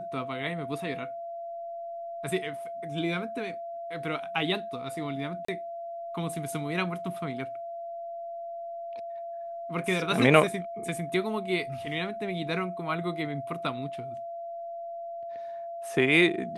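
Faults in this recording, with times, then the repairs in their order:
whine 680 Hz -35 dBFS
5.45–5.48 s: dropout 34 ms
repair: band-stop 680 Hz, Q 30; interpolate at 5.45 s, 34 ms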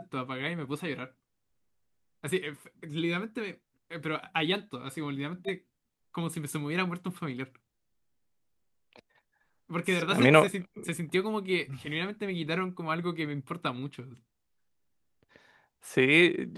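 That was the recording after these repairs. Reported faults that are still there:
nothing left

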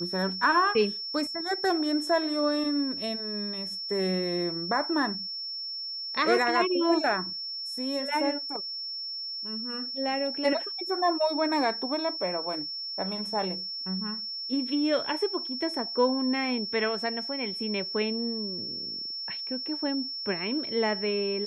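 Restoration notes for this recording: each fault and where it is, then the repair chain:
whine 5.4 kHz -33 dBFS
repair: band-stop 5.4 kHz, Q 30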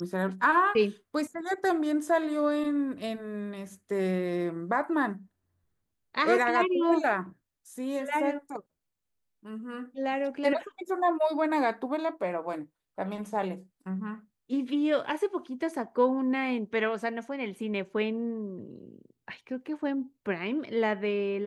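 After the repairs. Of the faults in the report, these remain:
nothing left

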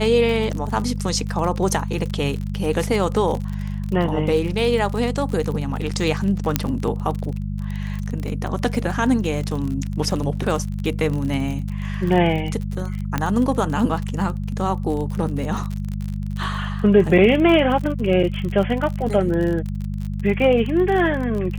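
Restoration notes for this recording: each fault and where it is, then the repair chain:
crackle 39 per s -26 dBFS
hum 50 Hz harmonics 4 -26 dBFS
6.56 s: pop -2 dBFS
13.18 s: pop -8 dBFS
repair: de-click; de-hum 50 Hz, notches 4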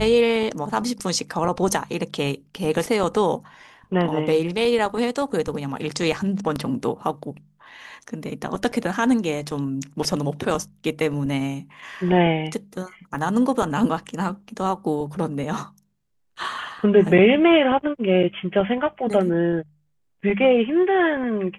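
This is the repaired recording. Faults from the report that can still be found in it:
6.56 s: pop
13.18 s: pop

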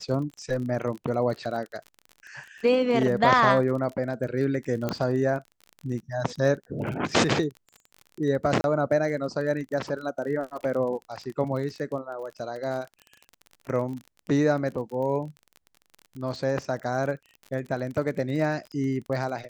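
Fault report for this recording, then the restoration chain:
crackle 36 per s -34 dBFS
4.89 s: pop -14 dBFS
8.61–8.64 s: dropout 31 ms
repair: de-click; interpolate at 8.61 s, 31 ms

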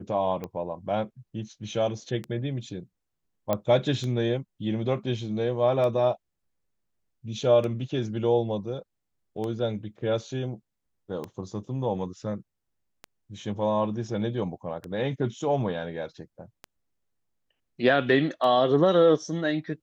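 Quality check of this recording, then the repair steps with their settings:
tick 33 1/3 rpm -21 dBFS
3.53 s: pop -12 dBFS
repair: de-click

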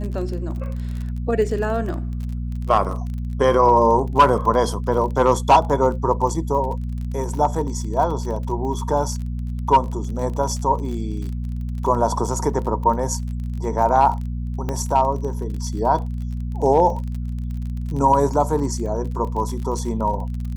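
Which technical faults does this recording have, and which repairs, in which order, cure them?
crackle 34 per s -29 dBFS
hum 60 Hz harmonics 4 -26 dBFS
14.69 s: pop -13 dBFS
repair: de-click; de-hum 60 Hz, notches 4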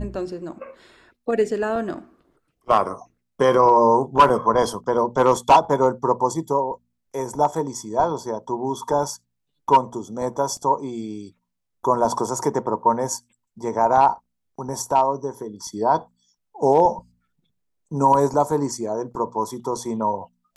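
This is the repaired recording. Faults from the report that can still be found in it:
nothing left

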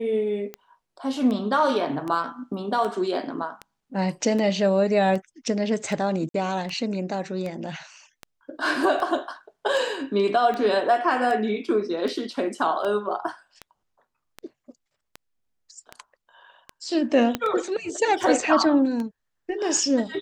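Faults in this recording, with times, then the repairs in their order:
tick 78 rpm -19 dBFS
6.29–6.34 s: dropout 53 ms
17.35 s: pop -10 dBFS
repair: de-click; interpolate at 6.29 s, 53 ms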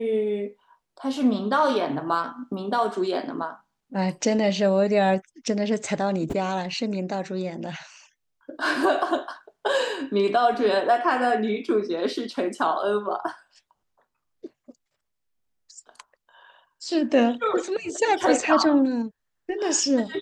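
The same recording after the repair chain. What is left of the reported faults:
17.35 s: pop

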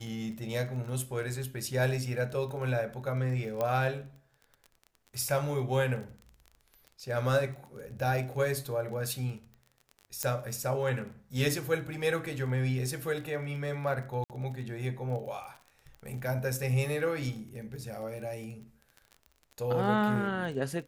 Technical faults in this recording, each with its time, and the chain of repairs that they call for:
crackle 25 per s -39 dBFS
3.61 s: pop -18 dBFS
10.23 s: pop -14 dBFS
14.24–14.30 s: dropout 58 ms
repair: de-click; interpolate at 14.24 s, 58 ms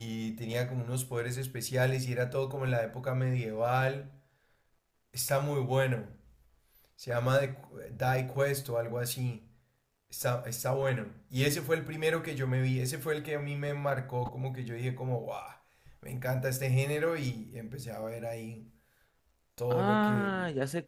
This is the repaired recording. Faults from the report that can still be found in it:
nothing left

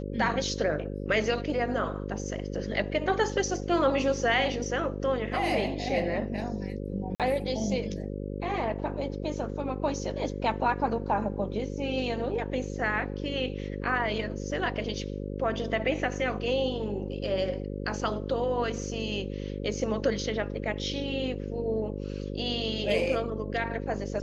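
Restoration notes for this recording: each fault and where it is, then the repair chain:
buzz 50 Hz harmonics 11 -35 dBFS
7.15–7.20 s: dropout 47 ms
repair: de-hum 50 Hz, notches 11; interpolate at 7.15 s, 47 ms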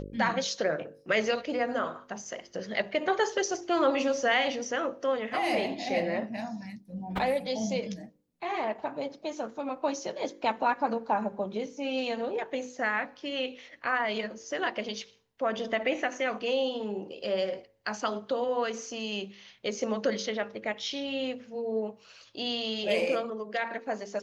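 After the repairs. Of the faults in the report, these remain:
nothing left

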